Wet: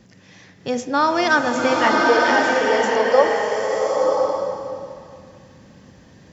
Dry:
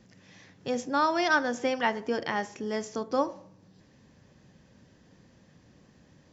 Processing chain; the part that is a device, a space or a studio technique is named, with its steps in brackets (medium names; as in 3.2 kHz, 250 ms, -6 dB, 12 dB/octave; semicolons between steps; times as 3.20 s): filtered reverb send (on a send at -10 dB: high-pass 470 Hz + low-pass 3 kHz + reverberation RT60 2.6 s, pre-delay 19 ms); 2.05–3.24 s: on the sum: resonant low shelf 360 Hz -10 dB, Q 3; swelling reverb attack 1050 ms, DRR -1.5 dB; trim +7 dB